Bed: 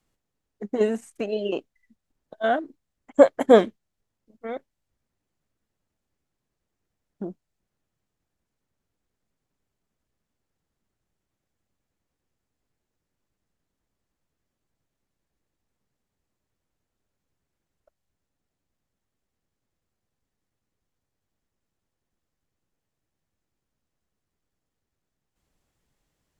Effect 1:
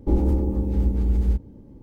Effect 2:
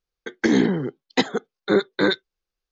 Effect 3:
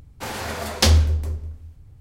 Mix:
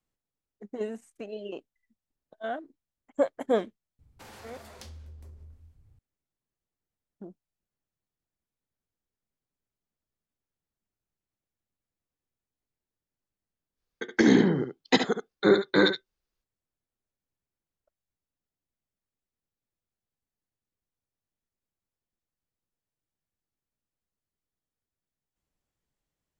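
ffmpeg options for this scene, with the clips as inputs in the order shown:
ffmpeg -i bed.wav -i cue0.wav -i cue1.wav -i cue2.wav -filter_complex "[0:a]volume=-11dB[link_01];[3:a]acompressor=threshold=-31dB:ratio=6:attack=3.2:release=140:knee=1:detection=peak[link_02];[2:a]aecho=1:1:71:0.376[link_03];[link_02]atrim=end=2,asetpts=PTS-STARTPTS,volume=-13.5dB,afade=type=in:duration=0.004:curve=hsin,afade=type=out:start_time=1.996:duration=0.004:curve=hsin,adelay=3990[link_04];[link_03]atrim=end=2.71,asetpts=PTS-STARTPTS,volume=-2dB,afade=type=in:duration=0.05,afade=type=out:start_time=2.66:duration=0.05,adelay=13750[link_05];[link_01][link_04][link_05]amix=inputs=3:normalize=0" out.wav

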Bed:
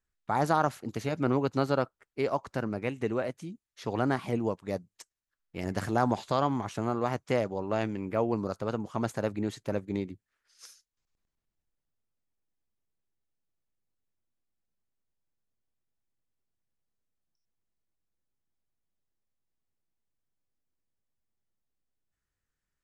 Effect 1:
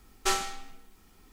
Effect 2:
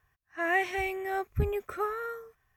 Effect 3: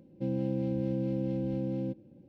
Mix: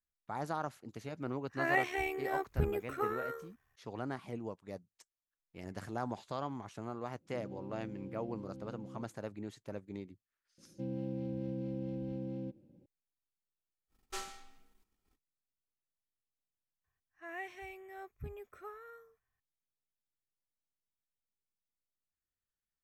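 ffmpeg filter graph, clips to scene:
ffmpeg -i bed.wav -i cue0.wav -i cue1.wav -i cue2.wav -filter_complex "[2:a]asplit=2[link_01][link_02];[3:a]asplit=2[link_03][link_04];[0:a]volume=-12dB[link_05];[link_01]tremolo=f=73:d=0.571[link_06];[1:a]agate=range=-12dB:threshold=-56dB:ratio=16:release=100:detection=peak[link_07];[link_06]atrim=end=2.56,asetpts=PTS-STARTPTS,volume=-1.5dB,afade=type=in:duration=0.004:curve=hsin,afade=type=out:start_time=2.556:duration=0.004:curve=hsin,adelay=1200[link_08];[link_03]atrim=end=2.28,asetpts=PTS-STARTPTS,volume=-16.5dB,afade=type=in:duration=0.004:curve=hsin,afade=type=out:start_time=2.276:duration=0.004:curve=hsin,adelay=7120[link_09];[link_04]atrim=end=2.28,asetpts=PTS-STARTPTS,volume=-7.5dB,afade=type=in:duration=0.004:curve=hsin,afade=type=out:start_time=2.276:duration=0.004:curve=hsin,adelay=466578S[link_10];[link_07]atrim=end=1.32,asetpts=PTS-STARTPTS,volume=-15dB,afade=type=in:duration=0.05,afade=type=out:start_time=1.27:duration=0.05,adelay=13870[link_11];[link_02]atrim=end=2.56,asetpts=PTS-STARTPTS,volume=-16.5dB,afade=type=in:duration=0.004:curve=hsin,afade=type=out:start_time=2.556:duration=0.004:curve=hsin,adelay=742644S[link_12];[link_05][link_08][link_09][link_10][link_11][link_12]amix=inputs=6:normalize=0" out.wav

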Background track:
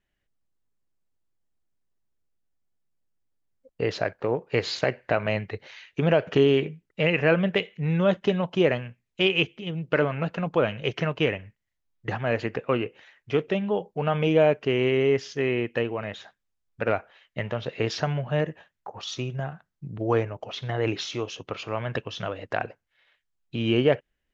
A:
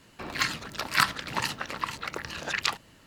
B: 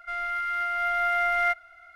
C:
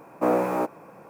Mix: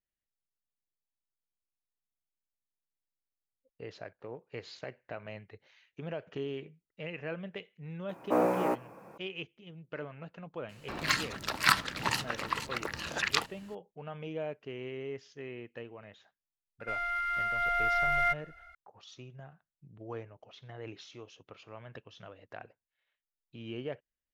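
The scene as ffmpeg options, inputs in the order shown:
ffmpeg -i bed.wav -i cue0.wav -i cue1.wav -i cue2.wav -filter_complex "[0:a]volume=-18dB[link_01];[2:a]asubboost=boost=9:cutoff=120[link_02];[3:a]atrim=end=1.09,asetpts=PTS-STARTPTS,volume=-4.5dB,afade=type=in:duration=0.004:curve=hsin,afade=type=out:start_time=1.086:duration=0.004:curve=hsin,adelay=8090[link_03];[1:a]atrim=end=3.06,asetpts=PTS-STARTPTS,volume=-1.5dB,afade=type=in:duration=0.004:curve=hsin,afade=type=out:start_time=3.056:duration=0.004:curve=hsin,adelay=10690[link_04];[link_02]atrim=end=1.95,asetpts=PTS-STARTPTS,volume=-3.5dB,afade=type=in:duration=0.004:curve=hsin,afade=type=out:start_time=1.946:duration=0.004:curve=hsin,adelay=16800[link_05];[link_01][link_03][link_04][link_05]amix=inputs=4:normalize=0" out.wav

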